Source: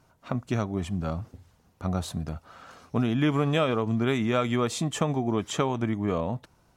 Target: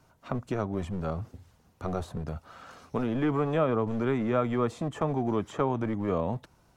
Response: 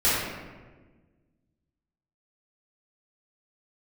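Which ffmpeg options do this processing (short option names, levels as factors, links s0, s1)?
-filter_complex "[0:a]acrossover=split=230|1700[s0][s1][s2];[s0]aeval=exprs='0.0316*(abs(mod(val(0)/0.0316+3,4)-2)-1)':c=same[s3];[s2]acompressor=threshold=0.00251:ratio=5[s4];[s3][s1][s4]amix=inputs=3:normalize=0"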